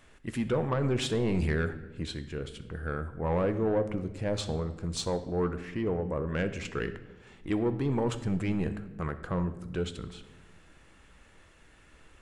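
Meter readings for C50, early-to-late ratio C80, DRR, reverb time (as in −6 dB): 12.5 dB, 15.0 dB, 9.0 dB, 1.2 s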